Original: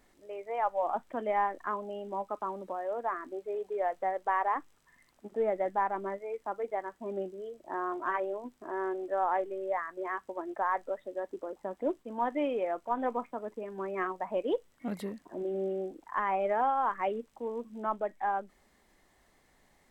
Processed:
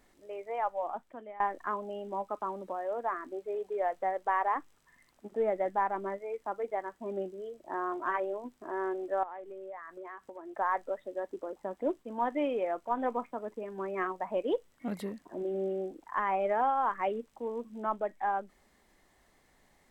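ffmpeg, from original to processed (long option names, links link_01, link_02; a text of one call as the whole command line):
ffmpeg -i in.wav -filter_complex "[0:a]asettb=1/sr,asplit=3[link_01][link_02][link_03];[link_01]atrim=end=9.234[link_04];[link_02]atrim=start=9.23:end=10.57,asetpts=PTS-STARTPTS,afade=type=in:duration=0.004:curve=qsin,afade=type=out:start_time=1.336:duration=0.004:curve=qsin,acompressor=threshold=-42dB:ratio=4:attack=3.2:release=140:knee=1:detection=peak[link_05];[link_03]atrim=start=10.566[link_06];[link_04][link_05]acrossfade=duration=0.004:curve1=hsin:curve2=qsin[link_07];[link_07][link_06]acrossfade=duration=0.004:curve1=qsin:curve2=hsin,asplit=2[link_08][link_09];[link_08]atrim=end=1.4,asetpts=PTS-STARTPTS,afade=type=out:start_time=0.43:duration=0.97:silence=0.0944061[link_10];[link_09]atrim=start=1.4,asetpts=PTS-STARTPTS,afade=type=in:duration=0.004:curve=hsin:silence=0.0944061[link_11];[link_10][link_11]concat=n=2:v=0:a=1" out.wav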